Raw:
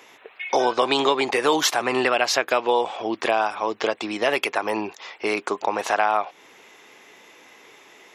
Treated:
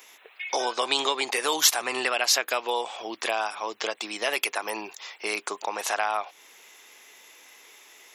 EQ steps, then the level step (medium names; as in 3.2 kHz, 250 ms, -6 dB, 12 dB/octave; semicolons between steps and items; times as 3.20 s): RIAA curve recording; -6.0 dB